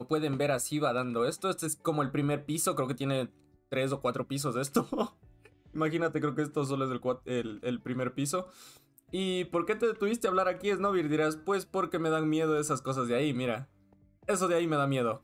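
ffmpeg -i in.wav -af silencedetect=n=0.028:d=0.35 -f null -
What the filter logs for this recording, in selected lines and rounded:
silence_start: 3.25
silence_end: 3.73 | silence_duration: 0.48
silence_start: 5.05
silence_end: 5.76 | silence_duration: 0.70
silence_start: 8.41
silence_end: 9.14 | silence_duration: 0.73
silence_start: 13.56
silence_end: 14.29 | silence_duration: 0.73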